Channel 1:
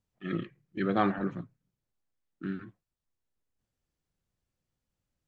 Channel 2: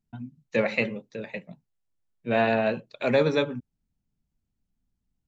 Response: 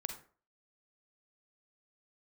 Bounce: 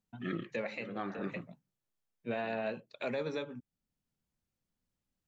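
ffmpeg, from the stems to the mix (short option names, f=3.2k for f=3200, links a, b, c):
-filter_complex "[0:a]agate=range=-6dB:threshold=-58dB:ratio=16:detection=peak,volume=1.5dB[a];[1:a]volume=-5.5dB,asplit=2[b][c];[c]apad=whole_len=232466[d];[a][d]sidechaincompress=threshold=-37dB:ratio=8:attack=16:release=676[e];[e][b]amix=inputs=2:normalize=0,lowshelf=f=110:g=-9,alimiter=level_in=2dB:limit=-24dB:level=0:latency=1:release=362,volume=-2dB"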